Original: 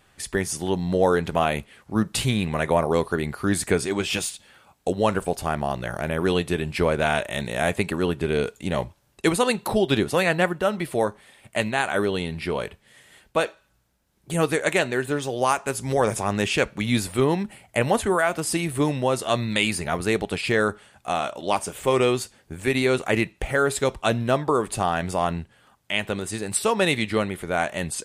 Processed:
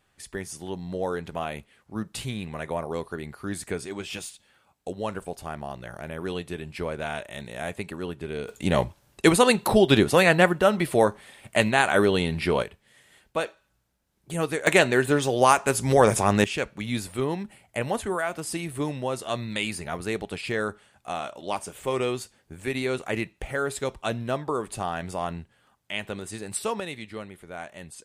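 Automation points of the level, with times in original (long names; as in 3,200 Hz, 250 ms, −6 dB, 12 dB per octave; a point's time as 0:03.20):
−9.5 dB
from 0:08.49 +3 dB
from 0:12.63 −5 dB
from 0:14.67 +3.5 dB
from 0:16.44 −6.5 dB
from 0:26.80 −14 dB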